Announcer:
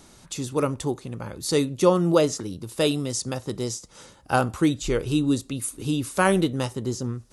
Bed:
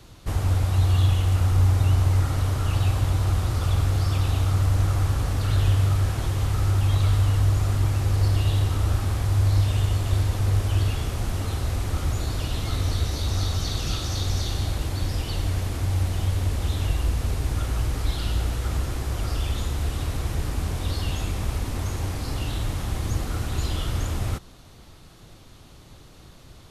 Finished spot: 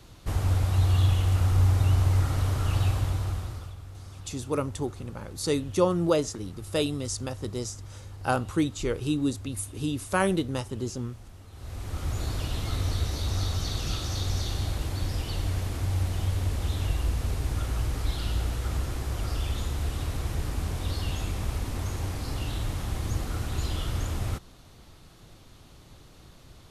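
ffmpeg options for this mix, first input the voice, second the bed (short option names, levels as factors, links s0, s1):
-filter_complex "[0:a]adelay=3950,volume=0.596[s0];[1:a]volume=5.62,afade=t=out:st=2.83:d=0.92:silence=0.11885,afade=t=in:st=11.52:d=0.73:silence=0.133352[s1];[s0][s1]amix=inputs=2:normalize=0"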